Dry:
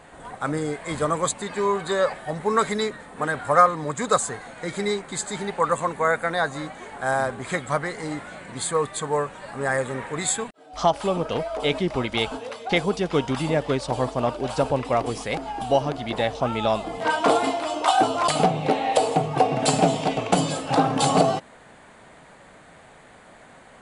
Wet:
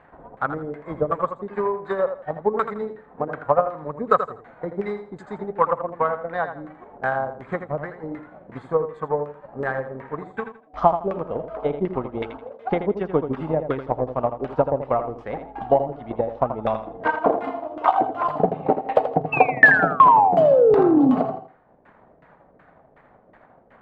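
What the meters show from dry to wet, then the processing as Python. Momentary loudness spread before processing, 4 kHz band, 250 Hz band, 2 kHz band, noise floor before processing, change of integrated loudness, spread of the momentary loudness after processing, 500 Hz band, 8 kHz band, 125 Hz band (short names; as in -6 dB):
9 LU, under -15 dB, +1.0 dB, +5.0 dB, -49 dBFS, +2.0 dB, 18 LU, +2.0 dB, under -35 dB, -3.5 dB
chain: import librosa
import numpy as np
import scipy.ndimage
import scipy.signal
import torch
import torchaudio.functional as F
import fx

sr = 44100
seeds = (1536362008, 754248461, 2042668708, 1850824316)

p1 = fx.spec_paint(x, sr, seeds[0], shape='fall', start_s=19.32, length_s=1.83, low_hz=240.0, high_hz=2700.0, level_db=-11.0)
p2 = fx.filter_lfo_lowpass(p1, sr, shape='saw_down', hz=2.7, low_hz=440.0, high_hz=1900.0, q=1.3)
p3 = fx.transient(p2, sr, attack_db=9, sustain_db=-5)
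p4 = p3 + fx.echo_feedback(p3, sr, ms=82, feedback_pct=26, wet_db=-9.5, dry=0)
y = F.gain(torch.from_numpy(p4), -6.0).numpy()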